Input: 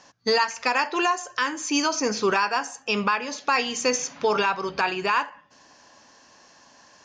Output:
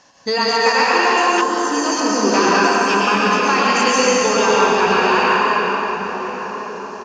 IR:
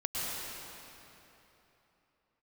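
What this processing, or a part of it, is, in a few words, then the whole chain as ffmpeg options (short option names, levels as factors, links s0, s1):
cave: -filter_complex "[0:a]aecho=1:1:323:0.355[s0];[1:a]atrim=start_sample=2205[s1];[s0][s1]afir=irnorm=-1:irlink=0,asettb=1/sr,asplit=3[s2][s3][s4];[s2]atrim=end=1.414[s5];[s3]atrim=start=1.41:end=2.34,asetpts=PTS-STARTPTS,afade=t=in:d=0.004:c=qsin,afade=t=out:st=0.926:d=0.004:c=qsin,equalizer=f=2400:t=o:w=1.2:g=-13.5[s6];[s4]atrim=start=2.336[s7];[s5][s6]acrossfade=d=0.004:c1=hsin:c2=qsin[s8];[s8][s7]acrossfade=d=0.004:c1=qsin:c2=hsin,asplit=2[s9][s10];[s10]adelay=1103,lowpass=f=1100:p=1,volume=0.355,asplit=2[s11][s12];[s12]adelay=1103,lowpass=f=1100:p=1,volume=0.48,asplit=2[s13][s14];[s14]adelay=1103,lowpass=f=1100:p=1,volume=0.48,asplit=2[s15][s16];[s16]adelay=1103,lowpass=f=1100:p=1,volume=0.48,asplit=2[s17][s18];[s18]adelay=1103,lowpass=f=1100:p=1,volume=0.48[s19];[s9][s11][s13][s15][s17][s19]amix=inputs=6:normalize=0,volume=1.33"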